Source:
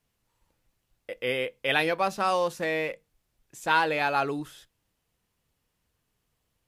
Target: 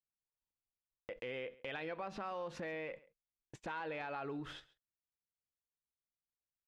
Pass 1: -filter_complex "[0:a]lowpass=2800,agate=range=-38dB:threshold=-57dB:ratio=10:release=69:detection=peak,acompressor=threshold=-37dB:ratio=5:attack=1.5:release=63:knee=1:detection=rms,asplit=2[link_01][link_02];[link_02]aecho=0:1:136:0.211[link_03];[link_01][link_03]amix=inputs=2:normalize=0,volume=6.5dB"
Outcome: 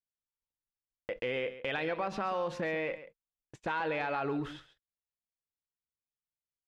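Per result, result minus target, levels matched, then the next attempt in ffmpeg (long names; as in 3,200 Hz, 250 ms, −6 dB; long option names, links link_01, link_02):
downward compressor: peak gain reduction −9 dB; echo-to-direct +8 dB
-filter_complex "[0:a]lowpass=2800,agate=range=-38dB:threshold=-57dB:ratio=10:release=69:detection=peak,acompressor=threshold=-48dB:ratio=5:attack=1.5:release=63:knee=1:detection=rms,asplit=2[link_01][link_02];[link_02]aecho=0:1:136:0.211[link_03];[link_01][link_03]amix=inputs=2:normalize=0,volume=6.5dB"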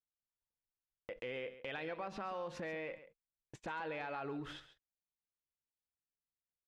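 echo-to-direct +8 dB
-filter_complex "[0:a]lowpass=2800,agate=range=-38dB:threshold=-57dB:ratio=10:release=69:detection=peak,acompressor=threshold=-48dB:ratio=5:attack=1.5:release=63:knee=1:detection=rms,asplit=2[link_01][link_02];[link_02]aecho=0:1:136:0.0841[link_03];[link_01][link_03]amix=inputs=2:normalize=0,volume=6.5dB"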